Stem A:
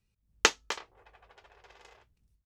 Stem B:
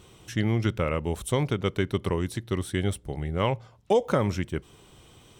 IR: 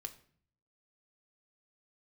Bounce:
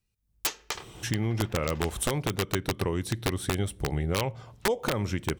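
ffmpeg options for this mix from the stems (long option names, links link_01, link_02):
-filter_complex "[0:a]highshelf=frequency=6600:gain=7.5,volume=-4.5dB,asplit=2[link_01][link_02];[link_02]volume=-6.5dB[link_03];[1:a]acompressor=threshold=-34dB:ratio=6,adelay=750,volume=-1dB,asplit=2[link_04][link_05];[link_05]volume=-7.5dB[link_06];[2:a]atrim=start_sample=2205[link_07];[link_03][link_06]amix=inputs=2:normalize=0[link_08];[link_08][link_07]afir=irnorm=-1:irlink=0[link_09];[link_01][link_04][link_09]amix=inputs=3:normalize=0,dynaudnorm=framelen=240:gausssize=5:maxgain=8dB,aeval=exprs='(mod(7.94*val(0)+1,2)-1)/7.94':channel_layout=same"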